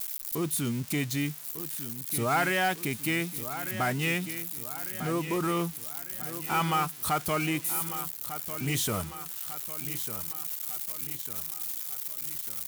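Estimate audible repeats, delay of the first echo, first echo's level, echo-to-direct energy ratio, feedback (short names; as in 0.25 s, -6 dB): 4, 1.199 s, -11.5 dB, -10.5 dB, 50%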